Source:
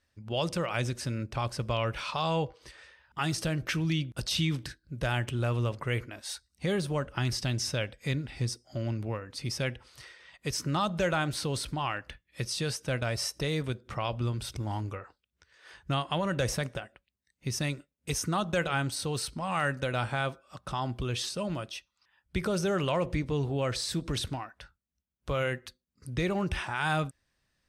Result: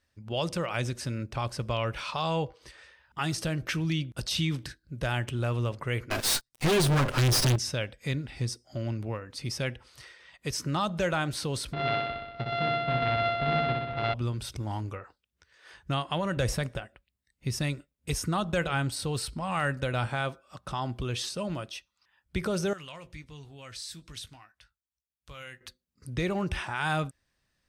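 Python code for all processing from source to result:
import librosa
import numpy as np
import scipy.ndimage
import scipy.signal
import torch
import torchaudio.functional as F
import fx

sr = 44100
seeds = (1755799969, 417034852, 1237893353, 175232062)

y = fx.chain(x, sr, fx.lower_of_two(delay_ms=7.8),
    fx.leveller(passes=5), at=(6.1, 7.56))
y = fx.chain(y, sr, fx.sample_sort(block=64),
    fx.ellip_lowpass(hz=3900.0, order=4, stop_db=60),
    fx.room_flutter(wall_m=10.7, rt60_s=1.1), at=(11.73, 14.14))
y = fx.chain(y, sr, fx.low_shelf(hz=68.0, db=12.0),
    fx.notch(hz=6100.0, q=12.0), at=(16.37, 20.07))
y = fx.chain(y, sr, fx.tone_stack(knobs='5-5-5'),
    fx.doubler(ms=19.0, db=-11.0), at=(22.73, 25.61))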